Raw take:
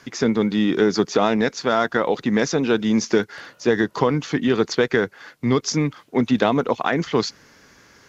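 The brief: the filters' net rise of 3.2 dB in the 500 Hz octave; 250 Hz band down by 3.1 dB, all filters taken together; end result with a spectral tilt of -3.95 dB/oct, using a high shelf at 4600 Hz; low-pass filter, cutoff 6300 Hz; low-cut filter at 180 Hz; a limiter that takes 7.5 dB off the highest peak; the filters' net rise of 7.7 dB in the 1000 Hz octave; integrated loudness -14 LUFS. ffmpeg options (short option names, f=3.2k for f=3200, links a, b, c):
-af "highpass=180,lowpass=6.3k,equalizer=f=250:t=o:g=-4,equalizer=f=500:t=o:g=3,equalizer=f=1k:t=o:g=9,highshelf=f=4.6k:g=6,volume=6.5dB,alimiter=limit=0dB:level=0:latency=1"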